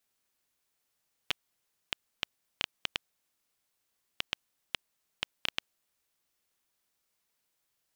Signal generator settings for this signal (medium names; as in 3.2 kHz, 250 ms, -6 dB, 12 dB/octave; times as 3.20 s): random clicks 3.3 per s -10.5 dBFS 4.44 s